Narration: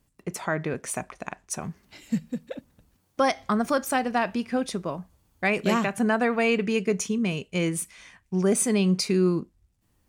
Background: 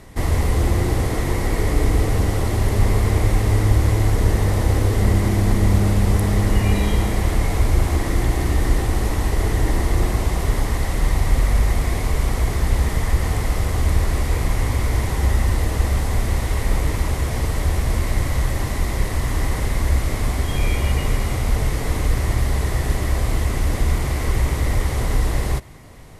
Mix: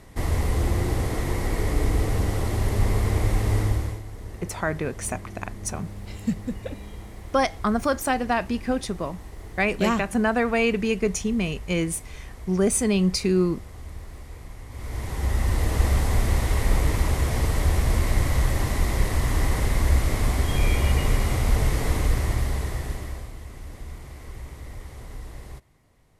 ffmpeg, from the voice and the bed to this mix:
ffmpeg -i stem1.wav -i stem2.wav -filter_complex "[0:a]adelay=4150,volume=1dB[link_01];[1:a]volume=14dB,afade=type=out:start_time=3.59:duration=0.43:silence=0.16788,afade=type=in:start_time=14.69:duration=1.16:silence=0.112202,afade=type=out:start_time=21.85:duration=1.47:silence=0.133352[link_02];[link_01][link_02]amix=inputs=2:normalize=0" out.wav

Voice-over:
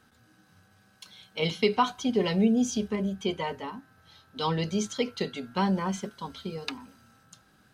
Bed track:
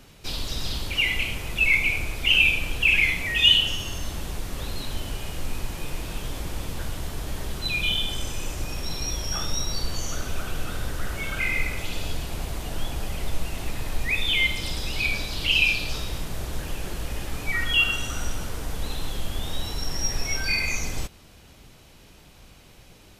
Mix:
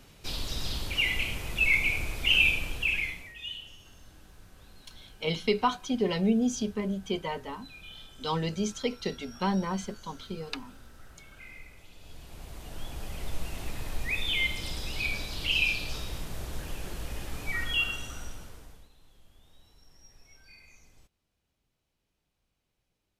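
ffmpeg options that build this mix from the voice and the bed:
ffmpeg -i stem1.wav -i stem2.wav -filter_complex "[0:a]adelay=3850,volume=-2dB[link_01];[1:a]volume=12.5dB,afade=type=out:start_time=2.48:duration=0.86:silence=0.11885,afade=type=in:start_time=11.98:duration=1.47:silence=0.149624,afade=type=out:start_time=17.59:duration=1.3:silence=0.0630957[link_02];[link_01][link_02]amix=inputs=2:normalize=0" out.wav

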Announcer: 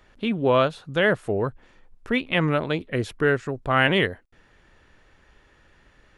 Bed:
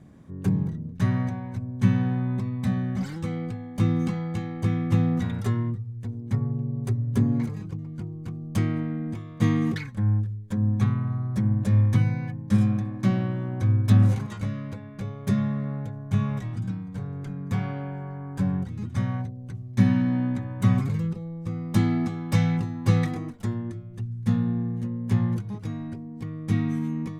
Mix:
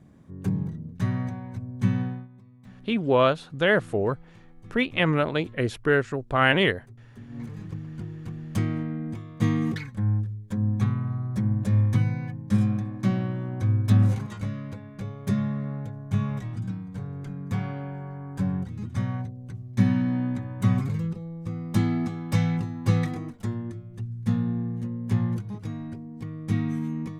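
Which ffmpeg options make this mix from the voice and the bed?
ffmpeg -i stem1.wav -i stem2.wav -filter_complex "[0:a]adelay=2650,volume=-0.5dB[link_01];[1:a]volume=18.5dB,afade=type=out:start_time=2.01:duration=0.27:silence=0.1,afade=type=in:start_time=7.28:duration=0.41:silence=0.0841395[link_02];[link_01][link_02]amix=inputs=2:normalize=0" out.wav

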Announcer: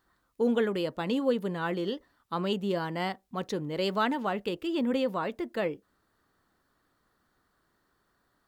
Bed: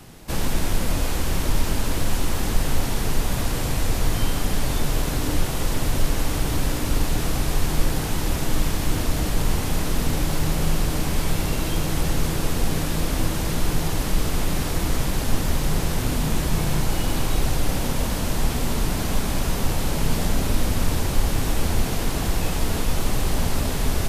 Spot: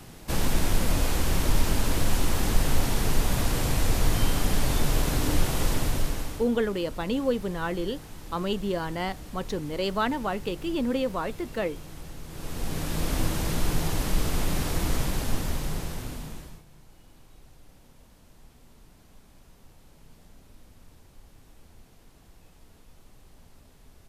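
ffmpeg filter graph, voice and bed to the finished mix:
ffmpeg -i stem1.wav -i stem2.wav -filter_complex "[0:a]adelay=6000,volume=1dB[link_01];[1:a]volume=14dB,afade=type=out:start_time=5.66:duration=0.83:silence=0.133352,afade=type=in:start_time=12.27:duration=0.86:silence=0.16788,afade=type=out:start_time=14.94:duration=1.69:silence=0.0398107[link_02];[link_01][link_02]amix=inputs=2:normalize=0" out.wav

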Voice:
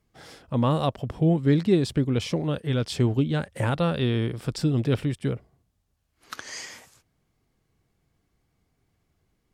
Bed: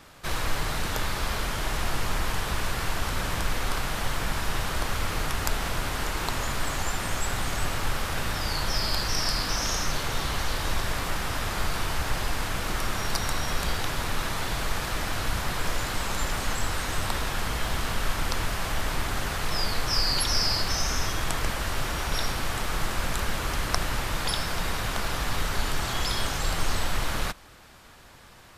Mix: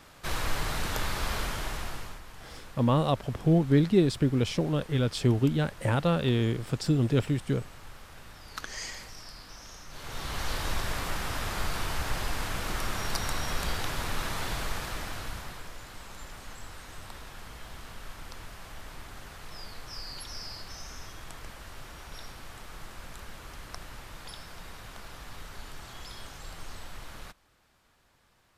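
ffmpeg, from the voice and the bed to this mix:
ffmpeg -i stem1.wav -i stem2.wav -filter_complex "[0:a]adelay=2250,volume=-1.5dB[link_01];[1:a]volume=13.5dB,afade=type=out:start_time=1.4:duration=0.81:silence=0.141254,afade=type=in:start_time=9.89:duration=0.62:silence=0.158489,afade=type=out:start_time=14.5:duration=1.19:silence=0.237137[link_02];[link_01][link_02]amix=inputs=2:normalize=0" out.wav

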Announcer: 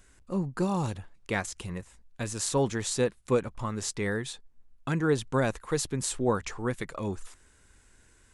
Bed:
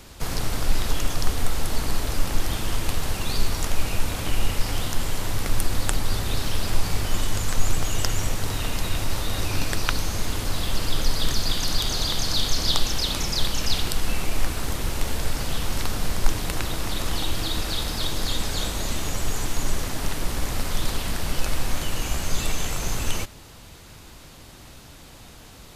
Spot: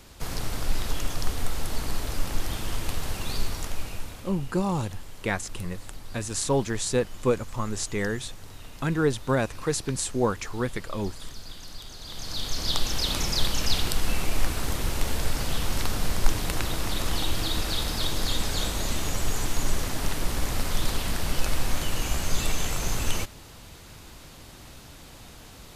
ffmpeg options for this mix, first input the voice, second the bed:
ffmpeg -i stem1.wav -i stem2.wav -filter_complex "[0:a]adelay=3950,volume=2dB[link_01];[1:a]volume=12dB,afade=type=out:start_time=3.33:duration=1:silence=0.223872,afade=type=in:start_time=12.01:duration=1.15:silence=0.149624[link_02];[link_01][link_02]amix=inputs=2:normalize=0" out.wav

